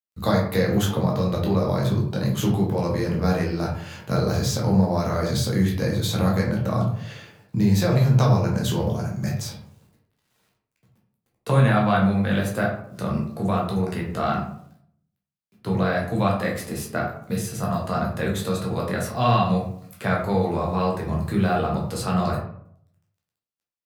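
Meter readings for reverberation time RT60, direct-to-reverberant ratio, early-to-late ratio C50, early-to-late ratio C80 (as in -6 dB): 0.65 s, -3.0 dB, 4.5 dB, 8.5 dB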